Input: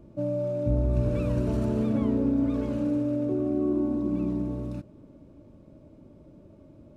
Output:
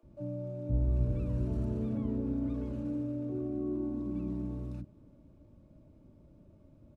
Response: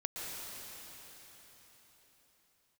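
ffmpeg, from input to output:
-filter_complex "[0:a]lowshelf=frequency=110:gain=7.5,acrossover=split=720[link_01][link_02];[link_02]alimiter=level_in=18.5dB:limit=-24dB:level=0:latency=1:release=66,volume=-18.5dB[link_03];[link_01][link_03]amix=inputs=2:normalize=0,acrossover=split=420[link_04][link_05];[link_04]adelay=30[link_06];[link_06][link_05]amix=inputs=2:normalize=0,volume=-8.5dB"

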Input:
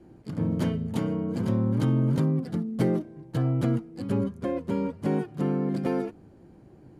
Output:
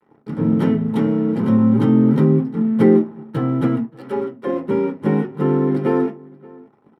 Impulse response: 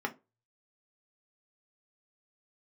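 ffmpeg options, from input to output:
-filter_complex "[0:a]asettb=1/sr,asplit=3[link_01][link_02][link_03];[link_01]atrim=end=1.574[link_04];[link_02]atrim=start=1.57:end=2.59,asetpts=PTS-STARTPTS,afade=type=in:duration=0.004:curve=qsin,afade=type=out:start_time=1.016:duration=0.004:curve=qsin,agate=range=-9dB:threshold=-27dB:ratio=16:detection=peak[link_05];[link_03]atrim=start=2.586[link_06];[link_04][link_05]acrossfade=duration=0.004:curve1=hsin:curve2=qsin[link_07];[link_07][link_06]acrossfade=duration=0.004:curve1=qsin:curve2=hsin,asettb=1/sr,asplit=3[link_08][link_09][link_10];[link_08]atrim=end=3.854[link_11];[link_09]atrim=start=3.85:end=4.47,asetpts=PTS-STARTPTS,afade=type=in:duration=0.004:curve=qsin,afade=type=out:start_time=0.616:duration=0.004:curve=qsin,highpass=420[link_12];[link_10]atrim=start=4.466[link_13];[link_11][link_12]acrossfade=duration=0.004:curve1=hsin:curve2=qsin[link_14];[link_14][link_13]acrossfade=duration=0.004:curve1=qsin:curve2=hsin,aeval=exprs='sgn(val(0))*max(abs(val(0))-0.00422,0)':channel_layout=same,asplit=2[link_15][link_16];[link_16]adelay=577.3,volume=-23dB,highshelf=frequency=4000:gain=-13[link_17];[link_15][link_17]amix=inputs=2:normalize=0[link_18];[1:a]atrim=start_sample=2205[link_19];[link_18][link_19]afir=irnorm=-1:irlink=0,volume=3.5dB"

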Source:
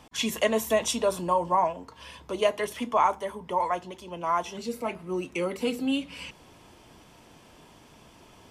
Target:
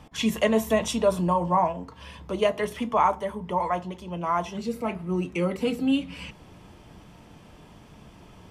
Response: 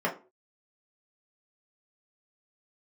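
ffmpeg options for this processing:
-filter_complex "[0:a]bass=frequency=250:gain=9,treble=frequency=4000:gain=-4,asplit=2[link_01][link_02];[1:a]atrim=start_sample=2205[link_03];[link_02][link_03]afir=irnorm=-1:irlink=0,volume=-22dB[link_04];[link_01][link_04]amix=inputs=2:normalize=0"

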